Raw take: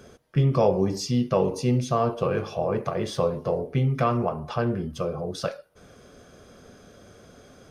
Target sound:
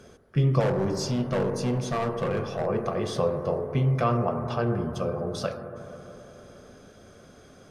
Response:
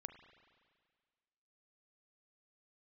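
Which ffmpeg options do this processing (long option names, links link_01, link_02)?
-filter_complex "[0:a]asplit=3[link_01][link_02][link_03];[link_01]afade=type=out:start_time=0.59:duration=0.02[link_04];[link_02]volume=21dB,asoftclip=hard,volume=-21dB,afade=type=in:start_time=0.59:duration=0.02,afade=type=out:start_time=2.65:duration=0.02[link_05];[link_03]afade=type=in:start_time=2.65:duration=0.02[link_06];[link_04][link_05][link_06]amix=inputs=3:normalize=0[link_07];[1:a]atrim=start_sample=2205,asetrate=22932,aresample=44100[link_08];[link_07][link_08]afir=irnorm=-1:irlink=0,volume=1dB"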